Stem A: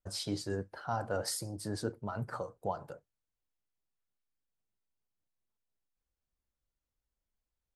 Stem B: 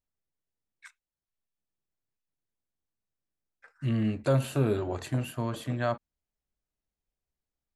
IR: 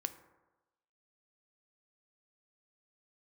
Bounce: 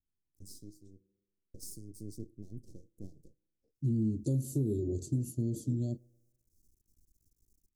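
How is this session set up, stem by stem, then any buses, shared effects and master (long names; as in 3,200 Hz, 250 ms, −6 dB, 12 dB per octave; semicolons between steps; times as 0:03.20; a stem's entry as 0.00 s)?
−4.0 dB, 0.35 s, muted 0:01.01–0:01.54, send −16.5 dB, upward compression, threshold −43 dBFS; half-wave rectification; automatic ducking −18 dB, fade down 0.35 s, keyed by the second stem
+1.0 dB, 0.00 s, send −14.5 dB, low-pass that shuts in the quiet parts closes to 1,900 Hz, open at −28 dBFS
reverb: on, RT60 1.1 s, pre-delay 3 ms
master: elliptic band-stop filter 350–5,900 Hz, stop band 60 dB; tape wow and flutter 28 cents; downward compressor, threshold −27 dBFS, peak gain reduction 7.5 dB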